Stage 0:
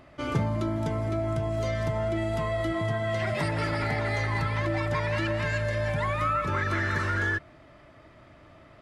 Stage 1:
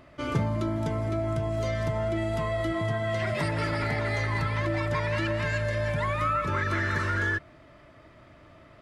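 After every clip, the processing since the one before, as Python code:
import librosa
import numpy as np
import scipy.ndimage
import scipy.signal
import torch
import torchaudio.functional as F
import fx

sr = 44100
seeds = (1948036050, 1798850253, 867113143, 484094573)

y = fx.notch(x, sr, hz=790.0, q=12.0)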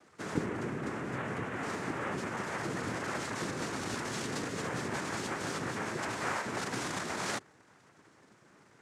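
y = fx.noise_vocoder(x, sr, seeds[0], bands=3)
y = y * librosa.db_to_amplitude(-7.5)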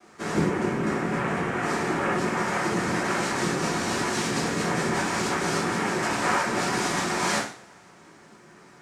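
y = fx.rev_double_slope(x, sr, seeds[1], early_s=0.46, late_s=2.2, knee_db=-28, drr_db=-7.0)
y = y * librosa.db_to_amplitude(2.5)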